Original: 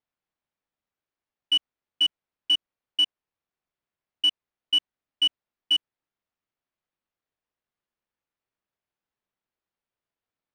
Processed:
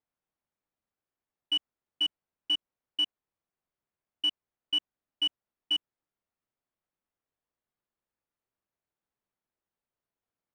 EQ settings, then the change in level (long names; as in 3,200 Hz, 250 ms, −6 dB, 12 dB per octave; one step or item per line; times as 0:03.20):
high-shelf EQ 2,300 Hz −10 dB
0.0 dB